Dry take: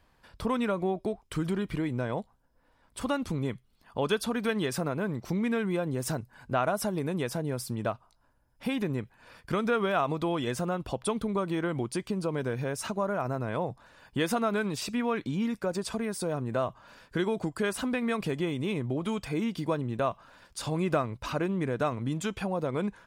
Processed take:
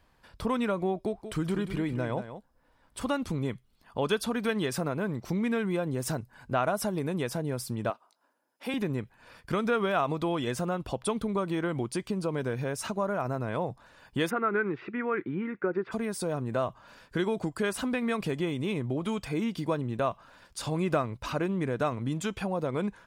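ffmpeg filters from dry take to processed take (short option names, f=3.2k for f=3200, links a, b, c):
-filter_complex "[0:a]asettb=1/sr,asplit=3[a][b][c];[a]atrim=end=1.004[d];[b]atrim=start=1:end=3.05,asetpts=PTS-STARTPTS,afade=t=in:d=0.004:c=qsin,afade=t=out:st=2.046:d=0.004:c=qsin,aecho=1:1:184:0.299,atrim=end_sample=90405[e];[c]atrim=start=3.046[f];[d][e]acrossfade=d=0.004:c1=hsin:c2=qsin[g];[g][f]acrossfade=d=0.004:c1=qsin:c2=hsin,asettb=1/sr,asplit=3[h][i][j];[h]atrim=end=7.904[k];[i]atrim=start=7.9:end=8.74,asetpts=PTS-STARTPTS,afade=t=in:d=0.004:c=qsin,afade=t=out:st=0.836:d=0.004:c=qsin,highpass=f=270:w=0.5412,highpass=f=270:w=1.3066[l];[j]atrim=start=8.736[m];[k][l]acrossfade=d=0.004:c1=hsin:c2=qsin[n];[n][m]acrossfade=d=0.004:c1=qsin:c2=hsin,asplit=3[o][p][q];[o]afade=t=out:st=14.29:d=0.02[r];[p]highpass=160,equalizer=f=230:t=q:w=4:g=-5,equalizer=f=360:t=q:w=4:g=9,equalizer=f=630:t=q:w=4:g=-9,equalizer=f=970:t=q:w=4:g=-4,equalizer=f=1.4k:t=q:w=4:g=6,equalizer=f=2k:t=q:w=4:g=6,lowpass=f=2.1k:w=0.5412,lowpass=f=2.1k:w=1.3066,afade=t=in:st=14.29:d=0.02,afade=t=out:st=15.91:d=0.02[s];[q]afade=t=in:st=15.91:d=0.02[t];[r][s][t]amix=inputs=3:normalize=0"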